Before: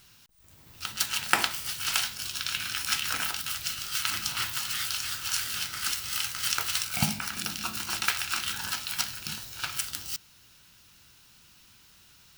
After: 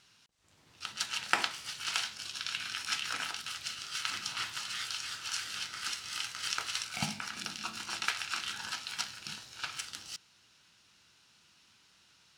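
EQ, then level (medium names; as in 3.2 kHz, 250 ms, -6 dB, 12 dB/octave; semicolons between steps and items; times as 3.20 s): high-pass 230 Hz 6 dB/octave; low-pass 6.9 kHz 12 dB/octave; -4.5 dB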